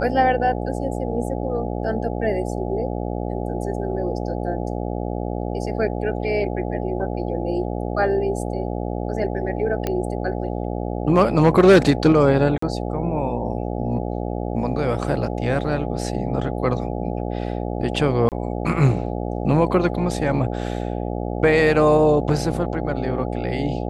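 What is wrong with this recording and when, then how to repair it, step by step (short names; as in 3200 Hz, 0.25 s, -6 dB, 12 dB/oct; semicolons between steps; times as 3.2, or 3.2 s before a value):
buzz 60 Hz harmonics 14 -26 dBFS
9.87 pop -10 dBFS
12.58–12.62 gap 44 ms
18.29–18.32 gap 28 ms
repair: de-click; de-hum 60 Hz, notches 14; interpolate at 12.58, 44 ms; interpolate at 18.29, 28 ms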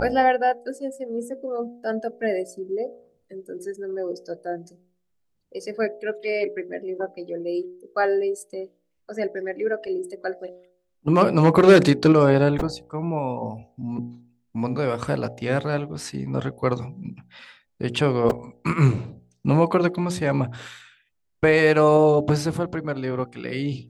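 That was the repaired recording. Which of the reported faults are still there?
none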